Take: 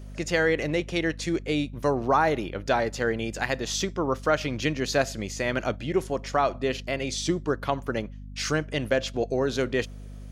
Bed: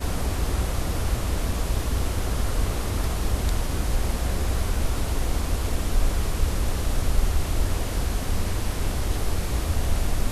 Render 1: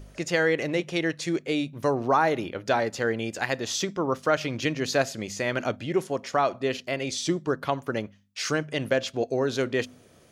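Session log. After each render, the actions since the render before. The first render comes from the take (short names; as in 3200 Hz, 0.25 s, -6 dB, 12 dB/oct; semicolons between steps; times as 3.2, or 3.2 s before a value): de-hum 50 Hz, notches 5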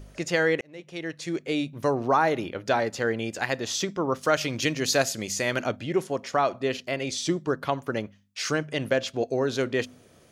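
0.61–1.6 fade in; 4.21–5.6 high shelf 4900 Hz +11.5 dB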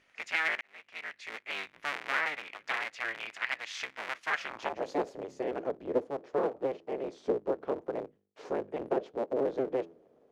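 cycle switcher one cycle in 3, inverted; band-pass sweep 2100 Hz -> 440 Hz, 4.3–4.97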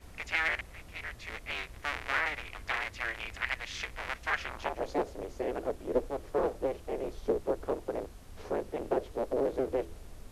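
add bed -24.5 dB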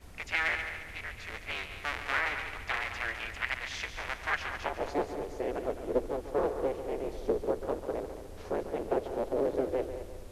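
multi-head echo 71 ms, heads second and third, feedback 42%, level -11 dB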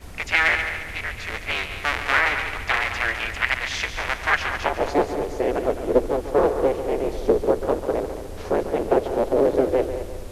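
gain +11 dB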